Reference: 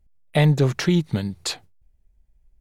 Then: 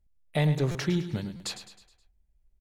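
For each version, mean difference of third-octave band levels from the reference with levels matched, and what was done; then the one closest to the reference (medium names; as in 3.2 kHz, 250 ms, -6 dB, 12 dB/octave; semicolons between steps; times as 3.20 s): 4.5 dB: on a send: feedback delay 105 ms, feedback 48%, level -11 dB; on the sum: buffer glitch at 0.71/1.36 s, samples 256, times 6; trim -8 dB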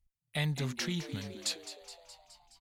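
7.5 dB: amplifier tone stack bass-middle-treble 5-5-5; on a send: frequency-shifting echo 210 ms, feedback 64%, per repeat +100 Hz, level -12 dB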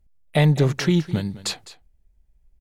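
1.5 dB: on a send: delay 207 ms -16.5 dB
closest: third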